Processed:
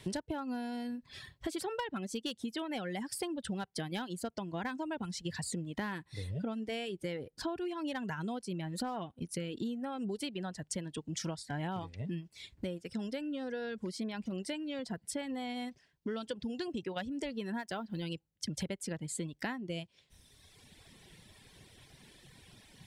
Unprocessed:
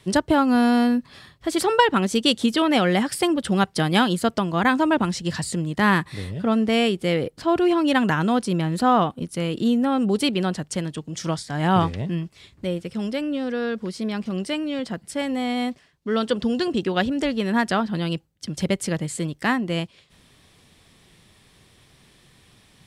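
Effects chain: 17.59–18.03 G.711 law mismatch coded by A; reverb removal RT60 1.3 s; hard clip -10 dBFS, distortion -25 dB; notch 1200 Hz, Q 6; compressor 10:1, threshold -35 dBFS, peak gain reduction 21 dB

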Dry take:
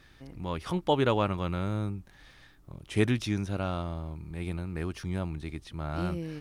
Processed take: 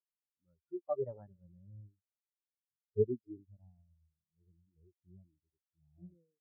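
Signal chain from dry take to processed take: echo 0.263 s -18.5 dB; formant shift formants +5 st; spectral expander 4:1; gain -7.5 dB

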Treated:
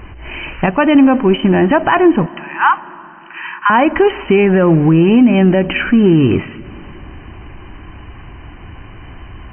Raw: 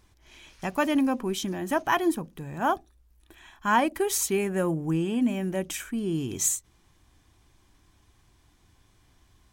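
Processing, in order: G.711 law mismatch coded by mu; 0.66–1.54 gate -29 dBFS, range -6 dB; 2.26–3.7 steep high-pass 880 Hz 96 dB/oct; compressor, threshold -25 dBFS, peak gain reduction 8.5 dB; brick-wall FIR low-pass 3100 Hz; plate-style reverb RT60 3.7 s, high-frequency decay 0.95×, DRR 19.5 dB; maximiser +21.5 dB; gain -1 dB

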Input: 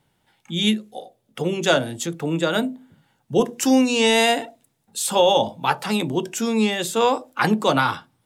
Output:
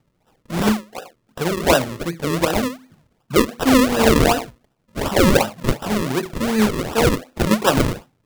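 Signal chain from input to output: in parallel at -2 dB: level quantiser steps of 9 dB; on the sum: decimation with a swept rate 40×, swing 100% 2.7 Hz; gain -1.5 dB

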